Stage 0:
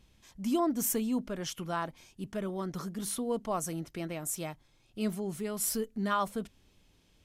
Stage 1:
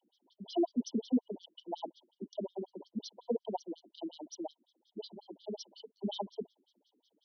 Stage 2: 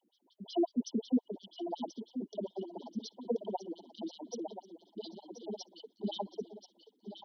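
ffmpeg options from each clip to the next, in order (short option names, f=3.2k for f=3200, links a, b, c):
-af "aeval=exprs='0.126*(cos(1*acos(clip(val(0)/0.126,-1,1)))-cos(1*PI/2))+0.00891*(cos(3*acos(clip(val(0)/0.126,-1,1)))-cos(3*PI/2))+0.002*(cos(7*acos(clip(val(0)/0.126,-1,1)))-cos(7*PI/2))':c=same,afftfilt=real='re*(1-between(b*sr/4096,1000,2900))':imag='im*(1-between(b*sr/4096,1000,2900))':win_size=4096:overlap=0.75,afftfilt=real='re*between(b*sr/1024,250*pow(4500/250,0.5+0.5*sin(2*PI*5.5*pts/sr))/1.41,250*pow(4500/250,0.5+0.5*sin(2*PI*5.5*pts/sr))*1.41)':imag='im*between(b*sr/1024,250*pow(4500/250,0.5+0.5*sin(2*PI*5.5*pts/sr))/1.41,250*pow(4500/250,0.5+0.5*sin(2*PI*5.5*pts/sr))*1.41)':win_size=1024:overlap=0.75,volume=6dB"
-af "aecho=1:1:1032|2064|3096:0.316|0.098|0.0304"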